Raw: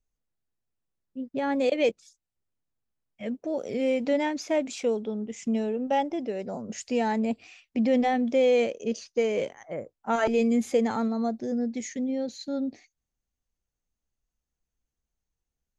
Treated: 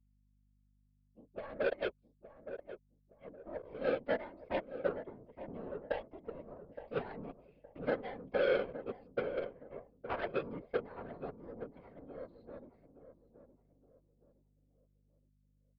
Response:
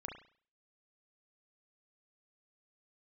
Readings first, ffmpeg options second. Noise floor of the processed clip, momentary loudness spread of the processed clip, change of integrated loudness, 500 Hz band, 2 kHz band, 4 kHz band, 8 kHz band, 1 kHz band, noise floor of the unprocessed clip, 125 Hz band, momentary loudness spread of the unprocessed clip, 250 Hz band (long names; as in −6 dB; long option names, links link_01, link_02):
−73 dBFS, 17 LU, −12.0 dB, −10.5 dB, −7.5 dB, −13.0 dB, below −35 dB, −14.0 dB, below −85 dBFS, −7.5 dB, 12 LU, −19.5 dB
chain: -filter_complex "[0:a]acrossover=split=3800[link_01][link_02];[link_02]acompressor=threshold=-49dB:ratio=4:attack=1:release=60[link_03];[link_01][link_03]amix=inputs=2:normalize=0,aecho=1:1:1.9:0.55,alimiter=limit=-16dB:level=0:latency=1:release=329,aeval=exprs='0.158*(cos(1*acos(clip(val(0)/0.158,-1,1)))-cos(1*PI/2))+0.0501*(cos(3*acos(clip(val(0)/0.158,-1,1)))-cos(3*PI/2))+0.00501*(cos(5*acos(clip(val(0)/0.158,-1,1)))-cos(5*PI/2))+0.00282*(cos(8*acos(clip(val(0)/0.158,-1,1)))-cos(8*PI/2))':channel_layout=same,afftfilt=real='hypot(re,im)*cos(2*PI*random(0))':imag='hypot(re,im)*sin(2*PI*random(1))':win_size=512:overlap=0.75,aeval=exprs='val(0)+0.000355*(sin(2*PI*50*n/s)+sin(2*PI*2*50*n/s)/2+sin(2*PI*3*50*n/s)/3+sin(2*PI*4*50*n/s)/4+sin(2*PI*5*50*n/s)/5)':channel_layout=same,adynamicsmooth=sensitivity=2.5:basefreq=2100,asplit=2[link_04][link_05];[link_05]adelay=867,lowpass=frequency=900:poles=1,volume=-10dB,asplit=2[link_06][link_07];[link_07]adelay=867,lowpass=frequency=900:poles=1,volume=0.38,asplit=2[link_08][link_09];[link_09]adelay=867,lowpass=frequency=900:poles=1,volume=0.38,asplit=2[link_10][link_11];[link_11]adelay=867,lowpass=frequency=900:poles=1,volume=0.38[link_12];[link_04][link_06][link_08][link_10][link_12]amix=inputs=5:normalize=0,aresample=11025,aresample=44100,volume=-1.5dB"